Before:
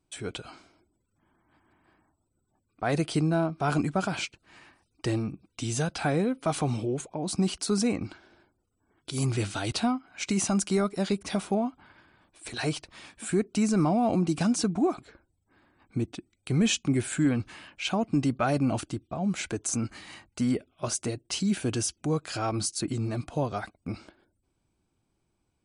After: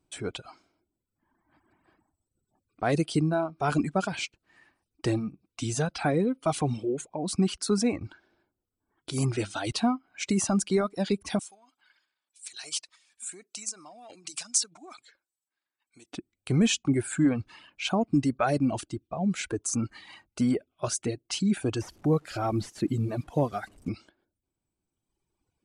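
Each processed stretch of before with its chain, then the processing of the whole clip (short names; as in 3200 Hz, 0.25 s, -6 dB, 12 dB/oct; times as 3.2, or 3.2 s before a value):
11.39–16.13 transient shaper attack +4 dB, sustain +12 dB + band-pass 7200 Hz, Q 1.2
21.81–23.89 delta modulation 64 kbps, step -44 dBFS + tilt shelf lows +3 dB, about 900 Hz
whole clip: reverb removal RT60 1.8 s; bell 380 Hz +2.5 dB 2.6 oct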